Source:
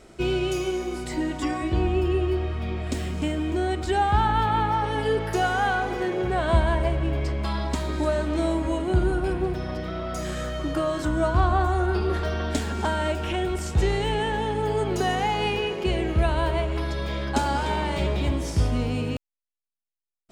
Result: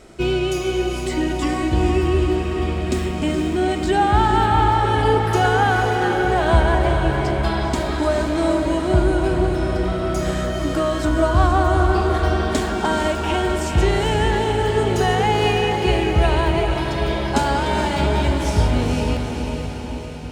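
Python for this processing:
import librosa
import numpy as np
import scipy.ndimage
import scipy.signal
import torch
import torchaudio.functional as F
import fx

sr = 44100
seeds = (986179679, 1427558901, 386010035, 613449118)

y = fx.echo_diffused(x, sr, ms=456, feedback_pct=62, wet_db=-5.0)
y = y * librosa.db_to_amplitude(4.5)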